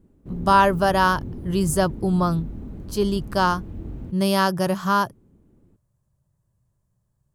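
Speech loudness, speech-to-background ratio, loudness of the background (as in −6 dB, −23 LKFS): −21.5 LKFS, 14.5 dB, −36.0 LKFS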